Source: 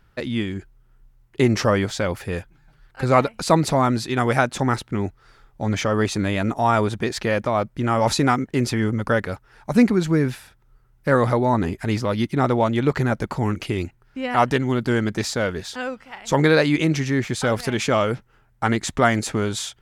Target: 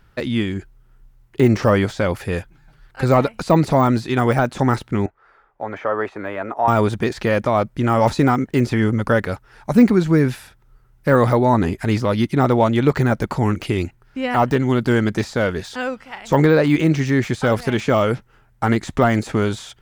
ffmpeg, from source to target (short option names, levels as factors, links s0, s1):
-filter_complex "[0:a]deesser=0.9,asettb=1/sr,asplit=3[s0][s1][s2];[s0]atrim=end=5.064[s3];[s1]atrim=start=5.06:end=6.68,asetpts=PTS-STARTPTS,afade=t=in:d=0.004:c=qsin,afade=t=out:st=1.616:d=0.004:c=qsin,acrossover=split=410 2100:gain=0.1 1 0.0794[s4][s5][s6];[s4][s5][s6]amix=inputs=3:normalize=0[s7];[s2]atrim=start=6.676[s8];[s3][s7]acrossfade=d=0.004:c1=hsin:c2=qsin[s9];[s9][s8]acrossfade=d=0.004:c1=qsin:c2=hsin,volume=1.58"